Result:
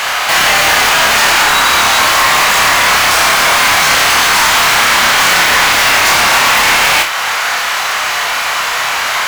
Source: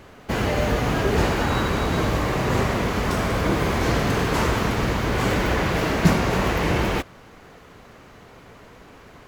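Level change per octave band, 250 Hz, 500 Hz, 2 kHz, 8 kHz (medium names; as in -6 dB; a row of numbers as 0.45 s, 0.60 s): -4.5 dB, +4.0 dB, +19.5 dB, +24.0 dB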